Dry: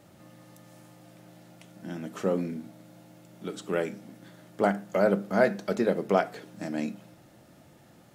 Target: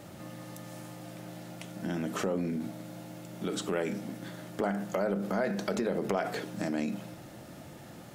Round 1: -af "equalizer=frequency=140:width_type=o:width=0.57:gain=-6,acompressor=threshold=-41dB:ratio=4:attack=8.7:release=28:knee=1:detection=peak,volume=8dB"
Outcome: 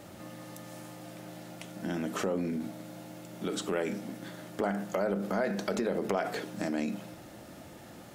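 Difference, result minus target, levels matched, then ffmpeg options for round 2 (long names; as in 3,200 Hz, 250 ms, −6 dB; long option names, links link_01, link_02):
125 Hz band −2.5 dB
-af "acompressor=threshold=-41dB:ratio=4:attack=8.7:release=28:knee=1:detection=peak,volume=8dB"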